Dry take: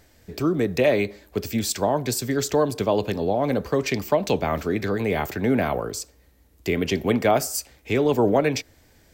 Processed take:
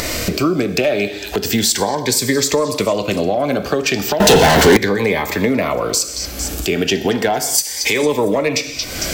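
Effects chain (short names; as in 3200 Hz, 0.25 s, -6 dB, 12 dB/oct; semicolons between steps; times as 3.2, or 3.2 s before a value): upward compressor, threshold -28 dBFS; 7.58–8.03 tilt +2.5 dB/oct; non-linear reverb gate 0.25 s falling, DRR 10 dB; overdrive pedal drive 10 dB, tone 2000 Hz, clips at -6.5 dBFS; high shelf 3700 Hz +10 dB; on a send: delay with a stepping band-pass 0.227 s, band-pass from 4300 Hz, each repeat 0.7 oct, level -12 dB; on the sum: compressor 6:1, threshold -34 dBFS, peak gain reduction 19 dB; 4.2–4.77 sample leveller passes 5; maximiser +22.5 dB; cascading phaser rising 0.35 Hz; gain -2 dB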